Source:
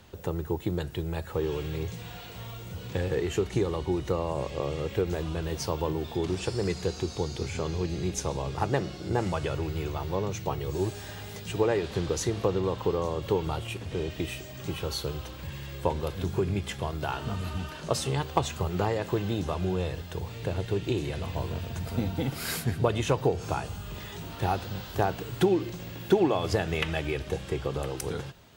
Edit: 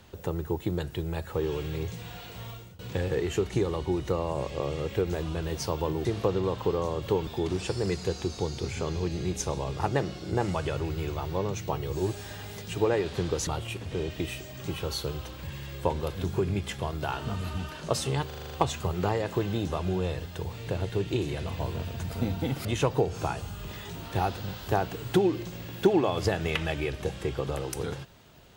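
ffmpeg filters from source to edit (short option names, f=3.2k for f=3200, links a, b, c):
-filter_complex "[0:a]asplit=12[a][b][c][d][e][f][g][h][i][j][k][l];[a]atrim=end=2.79,asetpts=PTS-STARTPTS,afade=t=out:st=2.5:d=0.29:silence=0.0749894[m];[b]atrim=start=2.79:end=6.052,asetpts=PTS-STARTPTS,afade=t=in:d=0.004:c=hsin:silence=0.0749894[n];[c]atrim=start=12.248:end=13.472[o];[d]atrim=start=6.048:end=12.252[p];[e]atrim=start=13.468:end=18.312[q];[f]atrim=start=18.268:end=18.312[r];[g]atrim=start=18.268:end=18.312[s];[h]atrim=start=18.268:end=18.312[t];[i]atrim=start=18.268:end=18.312[u];[j]atrim=start=18.268:end=18.312[v];[k]atrim=start=18.268:end=22.412[w];[l]atrim=start=22.918[x];[m][n]concat=n=2:v=0:a=1[y];[y][o]acrossfade=d=0.004:c1=hsin:c2=hsin[z];[z][p]acrossfade=d=0.004:c1=hsin:c2=hsin[aa];[aa][q]acrossfade=d=0.004:c1=hsin:c2=hsin[ab];[ab][r]acrossfade=d=0.004:c1=hsin:c2=hsin[ac];[ac][s]acrossfade=d=0.004:c1=hsin:c2=hsin[ad];[ad][t]acrossfade=d=0.004:c1=hsin:c2=hsin[ae];[ae][u]acrossfade=d=0.004:c1=hsin:c2=hsin[af];[af][v]acrossfade=d=0.004:c1=hsin:c2=hsin[ag];[ag][w]acrossfade=d=0.004:c1=hsin:c2=hsin[ah];[ah][x]acrossfade=d=0.004:c1=hsin:c2=hsin"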